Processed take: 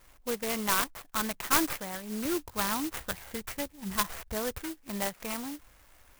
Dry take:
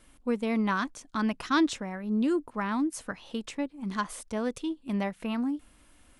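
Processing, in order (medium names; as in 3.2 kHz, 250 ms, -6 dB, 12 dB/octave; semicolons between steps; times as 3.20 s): tracing distortion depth 0.18 ms; 2.25–4.59 s: peaking EQ 67 Hz +14.5 dB 1.9 oct; sample-rate reducer 5 kHz, jitter 0%; graphic EQ 250/2000/4000/8000 Hz -11/+4/+8/-6 dB; sampling jitter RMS 0.077 ms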